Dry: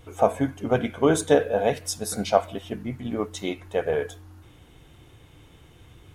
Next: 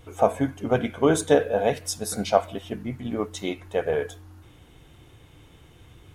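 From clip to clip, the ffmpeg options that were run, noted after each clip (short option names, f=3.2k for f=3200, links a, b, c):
-af anull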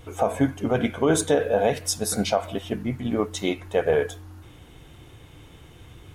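-af "alimiter=limit=-14dB:level=0:latency=1:release=87,volume=4dB"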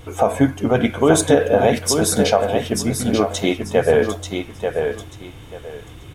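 -af "aecho=1:1:887|1774|2661:0.501|0.11|0.0243,volume=6dB"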